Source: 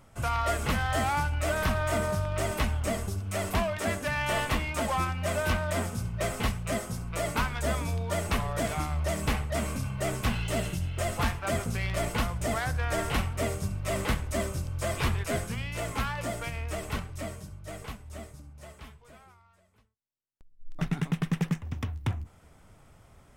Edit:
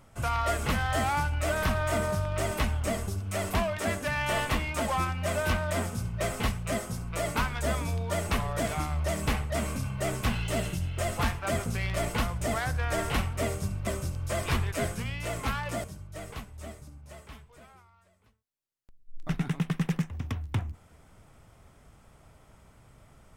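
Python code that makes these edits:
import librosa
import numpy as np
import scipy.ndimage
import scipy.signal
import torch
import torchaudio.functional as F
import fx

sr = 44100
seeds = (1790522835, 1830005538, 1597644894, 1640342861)

y = fx.edit(x, sr, fx.cut(start_s=13.87, length_s=0.52),
    fx.cut(start_s=16.36, length_s=1.0), tone=tone)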